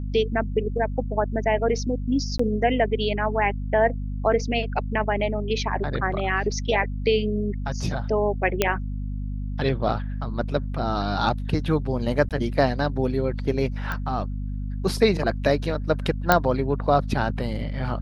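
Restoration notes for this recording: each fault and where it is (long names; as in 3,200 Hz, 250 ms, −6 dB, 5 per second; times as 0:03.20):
mains hum 50 Hz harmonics 5 −29 dBFS
0:02.38–0:02.39: drop-out 14 ms
0:08.62: click −4 dBFS
0:12.29–0:12.31: drop-out 17 ms
0:13.92: click −16 dBFS
0:16.32: click −2 dBFS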